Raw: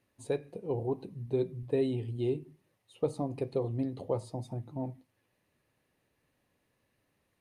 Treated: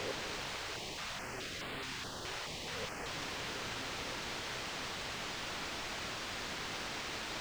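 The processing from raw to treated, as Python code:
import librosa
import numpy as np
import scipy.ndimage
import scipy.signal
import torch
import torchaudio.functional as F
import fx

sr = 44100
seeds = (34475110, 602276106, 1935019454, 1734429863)

y = fx.spec_swells(x, sr, rise_s=0.72)
y = fx.tilt_shelf(y, sr, db=4.5, hz=970.0)
y = fx.gate_flip(y, sr, shuts_db=-32.0, range_db=-29)
y = fx.quant_dither(y, sr, seeds[0], bits=6, dither='triangular')
y = fx.air_absorb(y, sr, metres=160.0)
y = fx.filter_held_notch(y, sr, hz=4.7, low_hz=220.0, high_hz=5900.0, at=(0.55, 3.06))
y = y * librosa.db_to_amplitude(3.0)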